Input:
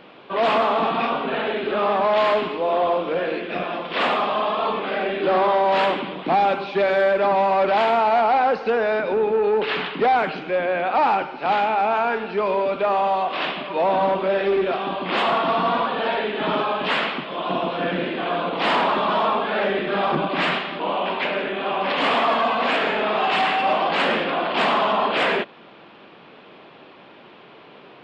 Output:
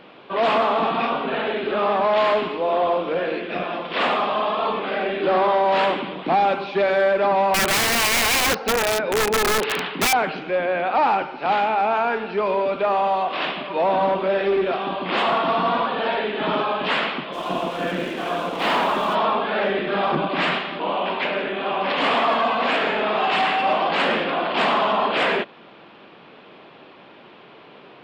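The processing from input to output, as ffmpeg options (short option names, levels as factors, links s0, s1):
-filter_complex "[0:a]asettb=1/sr,asplit=3[s0][s1][s2];[s0]atrim=end=7.544[s3];[s1]atrim=start=7.54:end=10.13,asetpts=PTS-STARTPTS,afade=t=in:d=0.004:c=qsin,afade=t=out:st=2.586:d=0.004:c=qsin,aeval=exprs='(mod(5.62*val(0)+1,2)-1)/5.62':c=same[s4];[s2]atrim=start=10.126[s5];[s3][s4]acrossfade=d=0.004:c1=hsin:c2=qsin[s6];[s6][s5]acrossfade=d=0.004:c1=qsin:c2=hsin,asplit=3[s7][s8][s9];[s7]afade=t=out:st=17.32:d=0.02[s10];[s8]aeval=exprs='sgn(val(0))*max(abs(val(0))-0.0106,0)':c=same,afade=t=in:st=17.32:d=0.02,afade=t=out:st=19.14:d=0.02[s11];[s9]afade=t=in:st=19.14:d=0.02[s12];[s10][s11][s12]amix=inputs=3:normalize=0"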